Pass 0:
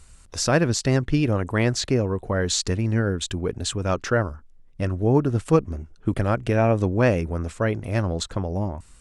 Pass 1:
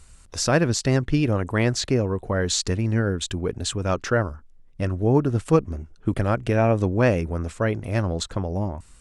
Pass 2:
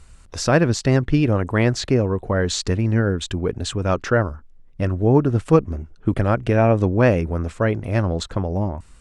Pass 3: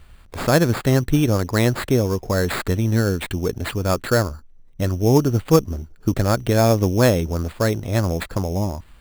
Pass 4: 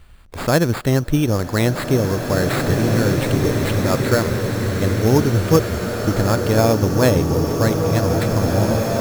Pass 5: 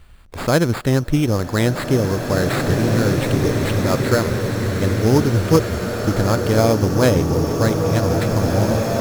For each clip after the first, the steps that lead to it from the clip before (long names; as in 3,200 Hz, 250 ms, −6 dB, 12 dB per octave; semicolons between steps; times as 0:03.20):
no processing that can be heard
high-shelf EQ 5,000 Hz −9 dB; level +3.5 dB
sample-rate reduction 5,900 Hz, jitter 0%
slow-attack reverb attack 2,370 ms, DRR 0.5 dB
highs frequency-modulated by the lows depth 0.15 ms